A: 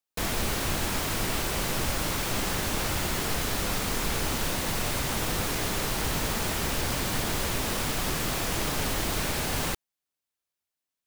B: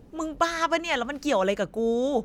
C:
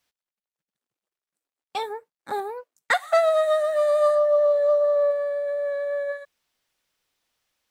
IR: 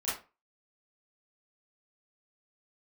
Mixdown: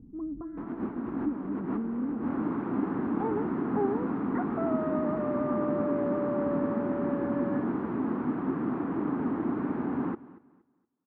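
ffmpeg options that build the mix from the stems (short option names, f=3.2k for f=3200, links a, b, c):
-filter_complex "[0:a]highpass=470,adelay=400,volume=0.5dB,asplit=2[a][b];[b]volume=-19dB[c];[1:a]acompressor=threshold=-28dB:ratio=6,volume=-16dB,asplit=3[d][e][f];[e]volume=-6dB[g];[2:a]alimiter=limit=-18.5dB:level=0:latency=1,adelay=1450,volume=-2dB[h];[f]apad=whole_len=505711[i];[a][i]sidechaincompress=threshold=-53dB:ratio=10:attack=16:release=115[j];[c][g]amix=inputs=2:normalize=0,aecho=0:1:234|468|702|936:1|0.27|0.0729|0.0197[k];[j][d][h][k]amix=inputs=4:normalize=0,lowpass=f=1.2k:w=0.5412,lowpass=f=1.2k:w=1.3066,lowshelf=f=390:t=q:w=3:g=13"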